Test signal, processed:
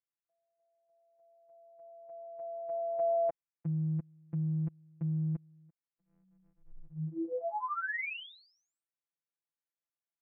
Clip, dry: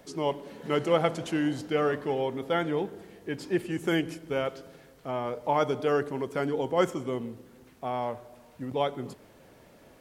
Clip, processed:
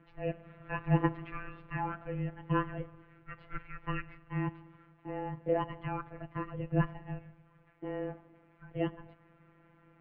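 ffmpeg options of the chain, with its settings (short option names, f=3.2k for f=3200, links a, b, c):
-af "afftfilt=real='hypot(re,im)*cos(PI*b)':imag='0':win_size=1024:overlap=0.75,highpass=f=480:t=q:w=0.5412,highpass=f=480:t=q:w=1.307,lowpass=f=2.8k:t=q:w=0.5176,lowpass=f=2.8k:t=q:w=0.7071,lowpass=f=2.8k:t=q:w=1.932,afreqshift=-360"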